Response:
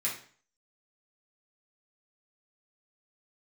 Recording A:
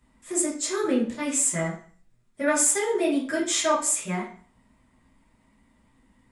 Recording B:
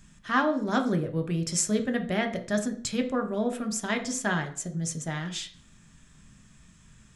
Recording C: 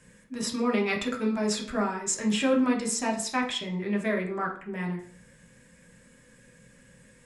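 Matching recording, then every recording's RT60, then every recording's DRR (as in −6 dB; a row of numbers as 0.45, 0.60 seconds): A; 0.45, 0.45, 0.45 seconds; −6.5, 5.5, −0.5 decibels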